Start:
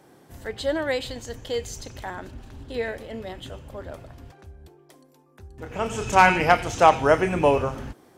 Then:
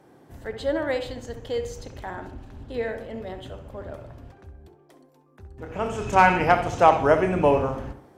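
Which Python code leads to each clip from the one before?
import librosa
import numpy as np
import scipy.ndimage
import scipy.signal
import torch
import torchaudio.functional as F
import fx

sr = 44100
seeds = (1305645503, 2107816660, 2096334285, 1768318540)

y = fx.high_shelf(x, sr, hz=2600.0, db=-8.5)
y = fx.echo_tape(y, sr, ms=66, feedback_pct=53, wet_db=-7, lp_hz=1600.0, drive_db=8.0, wow_cents=16)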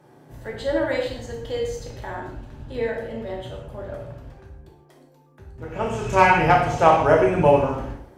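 y = fx.rev_gated(x, sr, seeds[0], gate_ms=190, shape='falling', drr_db=-1.0)
y = y * librosa.db_to_amplitude(-1.0)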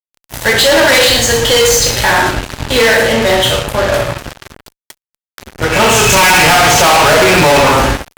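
y = fx.tilt_shelf(x, sr, db=-9.0, hz=1100.0)
y = fx.fuzz(y, sr, gain_db=38.0, gate_db=-45.0)
y = y * librosa.db_to_amplitude(6.5)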